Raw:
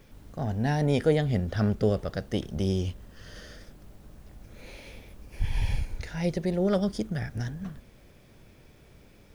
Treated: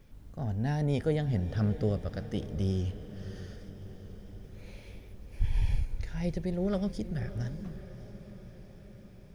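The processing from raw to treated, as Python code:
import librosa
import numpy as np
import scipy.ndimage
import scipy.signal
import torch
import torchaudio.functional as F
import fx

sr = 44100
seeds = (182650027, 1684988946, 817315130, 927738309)

p1 = fx.low_shelf(x, sr, hz=180.0, db=8.5)
p2 = p1 + fx.echo_diffused(p1, sr, ms=617, feedback_pct=63, wet_db=-14.0, dry=0)
y = p2 * 10.0 ** (-8.0 / 20.0)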